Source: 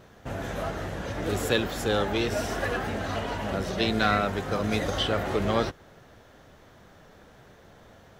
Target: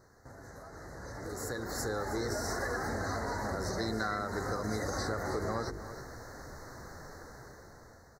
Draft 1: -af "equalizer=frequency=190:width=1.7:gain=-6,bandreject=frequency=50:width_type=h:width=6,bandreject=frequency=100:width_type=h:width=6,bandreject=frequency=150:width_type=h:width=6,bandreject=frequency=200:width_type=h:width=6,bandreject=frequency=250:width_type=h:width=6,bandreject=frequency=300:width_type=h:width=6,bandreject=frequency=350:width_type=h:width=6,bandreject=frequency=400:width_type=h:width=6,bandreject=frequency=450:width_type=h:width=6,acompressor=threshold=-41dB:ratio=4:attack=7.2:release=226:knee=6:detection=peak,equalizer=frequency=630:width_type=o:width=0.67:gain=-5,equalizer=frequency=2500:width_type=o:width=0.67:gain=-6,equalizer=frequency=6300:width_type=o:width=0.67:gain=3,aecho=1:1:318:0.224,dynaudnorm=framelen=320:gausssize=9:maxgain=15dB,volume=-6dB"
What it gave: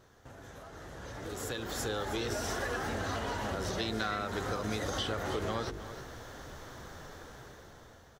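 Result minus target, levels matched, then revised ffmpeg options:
4,000 Hz band +5.5 dB
-af "asuperstop=centerf=2900:order=12:qfactor=1.5,equalizer=frequency=190:width=1.7:gain=-6,bandreject=frequency=50:width_type=h:width=6,bandreject=frequency=100:width_type=h:width=6,bandreject=frequency=150:width_type=h:width=6,bandreject=frequency=200:width_type=h:width=6,bandreject=frequency=250:width_type=h:width=6,bandreject=frequency=300:width_type=h:width=6,bandreject=frequency=350:width_type=h:width=6,bandreject=frequency=400:width_type=h:width=6,bandreject=frequency=450:width_type=h:width=6,acompressor=threshold=-41dB:ratio=4:attack=7.2:release=226:knee=6:detection=peak,equalizer=frequency=630:width_type=o:width=0.67:gain=-5,equalizer=frequency=2500:width_type=o:width=0.67:gain=-6,equalizer=frequency=6300:width_type=o:width=0.67:gain=3,aecho=1:1:318:0.224,dynaudnorm=framelen=320:gausssize=9:maxgain=15dB,volume=-6dB"

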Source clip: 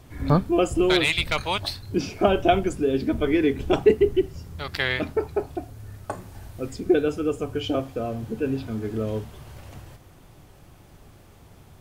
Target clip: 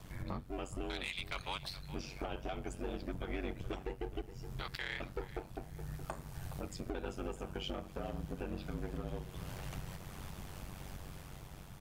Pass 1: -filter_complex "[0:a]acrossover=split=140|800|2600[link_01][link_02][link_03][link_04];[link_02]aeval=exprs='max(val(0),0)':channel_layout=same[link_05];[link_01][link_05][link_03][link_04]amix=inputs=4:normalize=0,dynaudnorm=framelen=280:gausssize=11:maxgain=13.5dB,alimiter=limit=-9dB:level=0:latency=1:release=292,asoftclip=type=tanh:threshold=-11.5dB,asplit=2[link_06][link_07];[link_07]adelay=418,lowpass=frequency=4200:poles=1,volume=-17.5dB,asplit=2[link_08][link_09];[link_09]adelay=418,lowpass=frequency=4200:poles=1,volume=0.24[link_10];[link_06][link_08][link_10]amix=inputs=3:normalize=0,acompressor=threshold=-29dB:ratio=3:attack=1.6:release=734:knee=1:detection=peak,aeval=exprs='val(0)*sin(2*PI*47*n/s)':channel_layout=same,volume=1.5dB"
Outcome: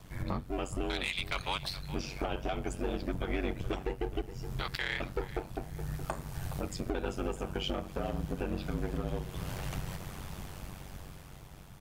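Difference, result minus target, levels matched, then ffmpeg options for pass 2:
downward compressor: peak gain reduction −6.5 dB
-filter_complex "[0:a]acrossover=split=140|800|2600[link_01][link_02][link_03][link_04];[link_02]aeval=exprs='max(val(0),0)':channel_layout=same[link_05];[link_01][link_05][link_03][link_04]amix=inputs=4:normalize=0,dynaudnorm=framelen=280:gausssize=11:maxgain=13.5dB,alimiter=limit=-9dB:level=0:latency=1:release=292,asoftclip=type=tanh:threshold=-11.5dB,asplit=2[link_06][link_07];[link_07]adelay=418,lowpass=frequency=4200:poles=1,volume=-17.5dB,asplit=2[link_08][link_09];[link_09]adelay=418,lowpass=frequency=4200:poles=1,volume=0.24[link_10];[link_06][link_08][link_10]amix=inputs=3:normalize=0,acompressor=threshold=-38.5dB:ratio=3:attack=1.6:release=734:knee=1:detection=peak,aeval=exprs='val(0)*sin(2*PI*47*n/s)':channel_layout=same,volume=1.5dB"

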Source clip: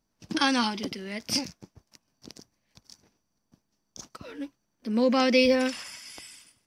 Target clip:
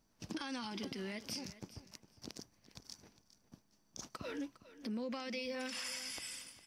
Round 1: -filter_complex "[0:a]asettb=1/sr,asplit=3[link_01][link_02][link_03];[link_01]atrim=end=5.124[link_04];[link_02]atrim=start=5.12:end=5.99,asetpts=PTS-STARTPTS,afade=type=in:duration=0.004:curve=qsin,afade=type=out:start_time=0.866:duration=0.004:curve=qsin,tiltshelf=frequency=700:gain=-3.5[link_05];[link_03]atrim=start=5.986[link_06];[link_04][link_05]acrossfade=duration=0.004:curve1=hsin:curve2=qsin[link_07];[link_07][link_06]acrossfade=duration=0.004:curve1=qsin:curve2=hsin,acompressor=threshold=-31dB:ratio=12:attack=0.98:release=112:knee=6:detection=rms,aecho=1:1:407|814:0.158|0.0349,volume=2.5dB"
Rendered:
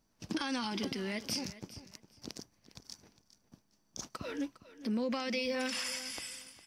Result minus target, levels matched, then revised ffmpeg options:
downward compressor: peak gain reduction −7 dB
-filter_complex "[0:a]asettb=1/sr,asplit=3[link_01][link_02][link_03];[link_01]atrim=end=5.124[link_04];[link_02]atrim=start=5.12:end=5.99,asetpts=PTS-STARTPTS,afade=type=in:duration=0.004:curve=qsin,afade=type=out:start_time=0.866:duration=0.004:curve=qsin,tiltshelf=frequency=700:gain=-3.5[link_05];[link_03]atrim=start=5.986[link_06];[link_04][link_05]acrossfade=duration=0.004:curve1=hsin:curve2=qsin[link_07];[link_07][link_06]acrossfade=duration=0.004:curve1=qsin:curve2=hsin,acompressor=threshold=-38.5dB:ratio=12:attack=0.98:release=112:knee=6:detection=rms,aecho=1:1:407|814:0.158|0.0349,volume=2.5dB"

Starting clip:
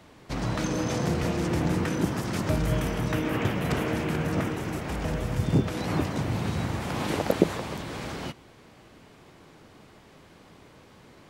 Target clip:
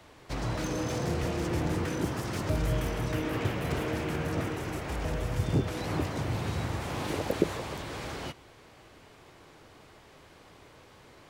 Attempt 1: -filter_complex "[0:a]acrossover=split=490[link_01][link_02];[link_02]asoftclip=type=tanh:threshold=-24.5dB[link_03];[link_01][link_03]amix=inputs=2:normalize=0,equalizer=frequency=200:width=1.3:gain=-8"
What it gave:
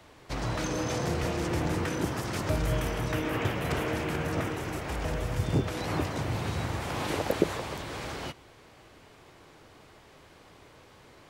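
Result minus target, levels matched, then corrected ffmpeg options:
soft clipping: distortion −7 dB
-filter_complex "[0:a]acrossover=split=490[link_01][link_02];[link_02]asoftclip=type=tanh:threshold=-34dB[link_03];[link_01][link_03]amix=inputs=2:normalize=0,equalizer=frequency=200:width=1.3:gain=-8"

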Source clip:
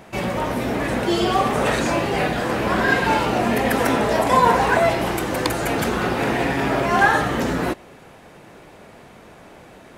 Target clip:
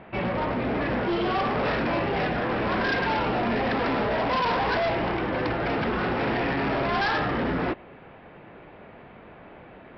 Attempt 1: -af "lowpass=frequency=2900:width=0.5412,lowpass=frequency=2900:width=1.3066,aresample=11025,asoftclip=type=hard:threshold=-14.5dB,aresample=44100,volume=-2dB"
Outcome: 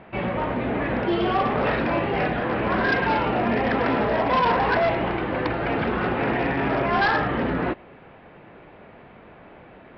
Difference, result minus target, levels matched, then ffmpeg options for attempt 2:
hard clipping: distortion −6 dB
-af "lowpass=frequency=2900:width=0.5412,lowpass=frequency=2900:width=1.3066,aresample=11025,asoftclip=type=hard:threshold=-20.5dB,aresample=44100,volume=-2dB"

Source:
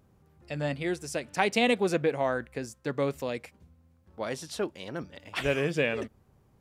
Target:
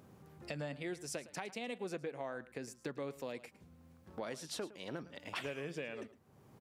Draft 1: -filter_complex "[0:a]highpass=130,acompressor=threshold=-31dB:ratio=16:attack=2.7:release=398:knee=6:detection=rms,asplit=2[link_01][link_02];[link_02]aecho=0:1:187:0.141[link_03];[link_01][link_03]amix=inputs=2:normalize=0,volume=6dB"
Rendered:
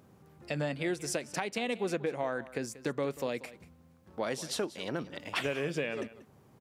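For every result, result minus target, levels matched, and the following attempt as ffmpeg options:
echo 77 ms late; downward compressor: peak gain reduction −9 dB
-filter_complex "[0:a]highpass=130,acompressor=threshold=-31dB:ratio=16:attack=2.7:release=398:knee=6:detection=rms,asplit=2[link_01][link_02];[link_02]aecho=0:1:110:0.141[link_03];[link_01][link_03]amix=inputs=2:normalize=0,volume=6dB"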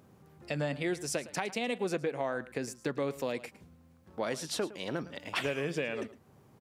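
downward compressor: peak gain reduction −9 dB
-filter_complex "[0:a]highpass=130,acompressor=threshold=-40.5dB:ratio=16:attack=2.7:release=398:knee=6:detection=rms,asplit=2[link_01][link_02];[link_02]aecho=0:1:110:0.141[link_03];[link_01][link_03]amix=inputs=2:normalize=0,volume=6dB"

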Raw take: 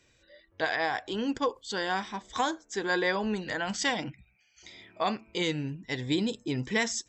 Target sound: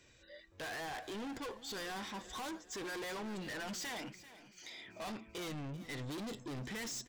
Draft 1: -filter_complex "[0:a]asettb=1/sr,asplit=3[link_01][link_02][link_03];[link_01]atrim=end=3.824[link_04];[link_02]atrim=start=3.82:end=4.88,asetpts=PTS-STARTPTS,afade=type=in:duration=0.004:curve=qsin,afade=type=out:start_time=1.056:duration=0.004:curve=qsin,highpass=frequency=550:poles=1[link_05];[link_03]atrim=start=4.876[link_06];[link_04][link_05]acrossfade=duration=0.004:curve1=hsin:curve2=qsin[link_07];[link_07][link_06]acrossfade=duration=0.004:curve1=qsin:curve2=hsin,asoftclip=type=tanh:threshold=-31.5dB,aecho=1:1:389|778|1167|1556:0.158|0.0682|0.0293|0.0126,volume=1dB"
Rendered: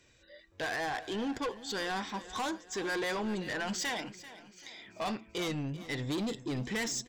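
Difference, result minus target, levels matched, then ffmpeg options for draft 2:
soft clipping: distortion −5 dB
-filter_complex "[0:a]asettb=1/sr,asplit=3[link_01][link_02][link_03];[link_01]atrim=end=3.824[link_04];[link_02]atrim=start=3.82:end=4.88,asetpts=PTS-STARTPTS,afade=type=in:duration=0.004:curve=qsin,afade=type=out:start_time=1.056:duration=0.004:curve=qsin,highpass=frequency=550:poles=1[link_05];[link_03]atrim=start=4.876[link_06];[link_04][link_05]acrossfade=duration=0.004:curve1=hsin:curve2=qsin[link_07];[link_07][link_06]acrossfade=duration=0.004:curve1=qsin:curve2=hsin,asoftclip=type=tanh:threshold=-42dB,aecho=1:1:389|778|1167|1556:0.158|0.0682|0.0293|0.0126,volume=1dB"

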